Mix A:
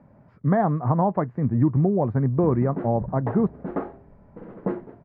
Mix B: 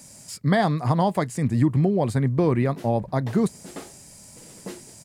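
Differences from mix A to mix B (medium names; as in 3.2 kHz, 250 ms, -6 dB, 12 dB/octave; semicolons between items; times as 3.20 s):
background -10.5 dB; master: remove low-pass 1.4 kHz 24 dB/octave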